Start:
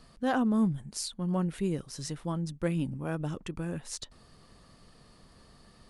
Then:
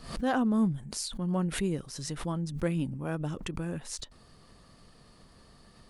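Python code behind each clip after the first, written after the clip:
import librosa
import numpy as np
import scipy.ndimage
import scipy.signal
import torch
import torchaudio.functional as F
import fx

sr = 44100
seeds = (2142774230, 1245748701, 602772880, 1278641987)

y = fx.pre_swell(x, sr, db_per_s=92.0)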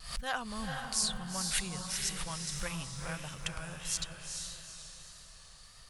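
y = fx.tone_stack(x, sr, knobs='10-0-10')
y = fx.echo_diffused(y, sr, ms=451, feedback_pct=45, wet_db=-4)
y = fx.vibrato(y, sr, rate_hz=1.6, depth_cents=31.0)
y = y * librosa.db_to_amplitude(5.5)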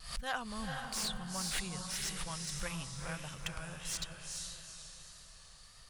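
y = fx.slew_limit(x, sr, full_power_hz=140.0)
y = y * librosa.db_to_amplitude(-2.0)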